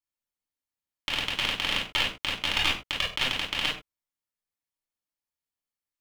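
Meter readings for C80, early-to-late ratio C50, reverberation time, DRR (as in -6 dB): 12.0 dB, 5.0 dB, no single decay rate, -5.5 dB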